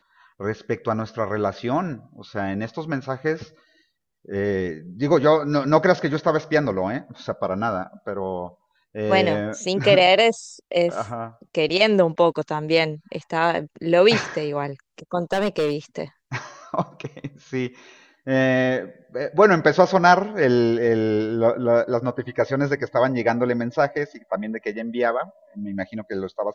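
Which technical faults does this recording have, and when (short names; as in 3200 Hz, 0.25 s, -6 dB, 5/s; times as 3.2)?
15.32–15.74 clipped -17 dBFS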